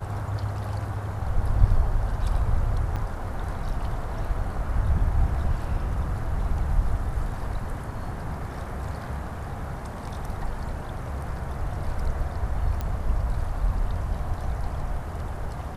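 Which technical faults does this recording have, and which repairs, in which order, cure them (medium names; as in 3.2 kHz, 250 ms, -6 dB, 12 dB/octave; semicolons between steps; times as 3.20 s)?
2.96–2.97 s: dropout 5.8 ms
12.81 s: pop -17 dBFS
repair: de-click; interpolate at 2.96 s, 5.8 ms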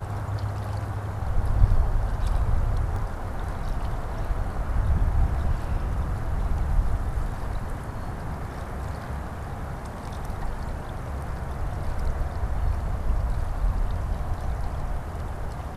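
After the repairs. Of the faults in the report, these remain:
nothing left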